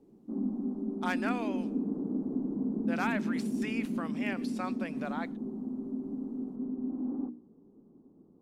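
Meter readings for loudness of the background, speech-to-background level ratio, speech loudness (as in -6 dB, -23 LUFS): -35.0 LUFS, -3.5 dB, -38.5 LUFS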